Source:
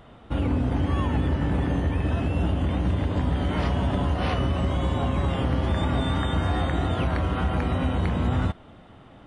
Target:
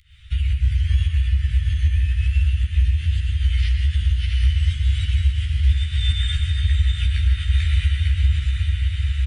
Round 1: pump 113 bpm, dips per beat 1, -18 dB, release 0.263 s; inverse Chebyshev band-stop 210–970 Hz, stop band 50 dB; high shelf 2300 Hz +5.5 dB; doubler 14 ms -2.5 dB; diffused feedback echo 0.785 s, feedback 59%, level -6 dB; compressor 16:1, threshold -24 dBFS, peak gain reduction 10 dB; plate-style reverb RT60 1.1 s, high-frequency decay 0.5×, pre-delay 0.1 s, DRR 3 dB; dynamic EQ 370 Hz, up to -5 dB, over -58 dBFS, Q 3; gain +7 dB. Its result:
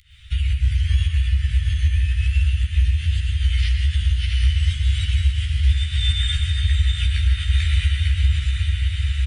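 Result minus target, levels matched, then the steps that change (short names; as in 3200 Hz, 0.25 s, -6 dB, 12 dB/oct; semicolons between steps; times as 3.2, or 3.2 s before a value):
500 Hz band -3.5 dB; 4000 Hz band +3.5 dB
change: dynamic EQ 860 Hz, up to -5 dB, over -58 dBFS, Q 3; remove: high shelf 2300 Hz +5.5 dB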